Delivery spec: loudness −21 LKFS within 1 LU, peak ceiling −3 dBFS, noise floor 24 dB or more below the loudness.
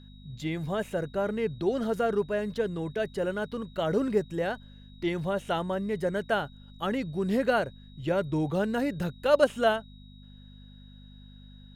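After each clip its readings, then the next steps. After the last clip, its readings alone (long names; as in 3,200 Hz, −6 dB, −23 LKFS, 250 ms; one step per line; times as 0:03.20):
mains hum 50 Hz; hum harmonics up to 250 Hz; level of the hum −47 dBFS; interfering tone 3,800 Hz; level of the tone −58 dBFS; integrated loudness −29.5 LKFS; sample peak −8.5 dBFS; target loudness −21.0 LKFS
→ hum removal 50 Hz, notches 5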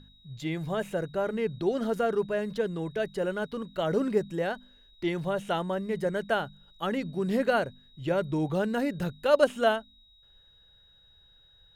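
mains hum none found; interfering tone 3,800 Hz; level of the tone −58 dBFS
→ notch filter 3,800 Hz, Q 30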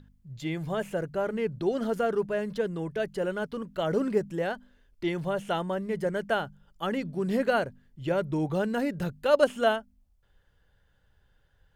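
interfering tone none found; integrated loudness −29.5 LKFS; sample peak −8.5 dBFS; target loudness −21.0 LKFS
→ level +8.5 dB
brickwall limiter −3 dBFS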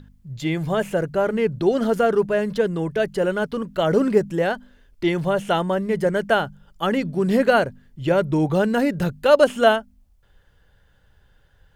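integrated loudness −21.0 LKFS; sample peak −3.0 dBFS; background noise floor −58 dBFS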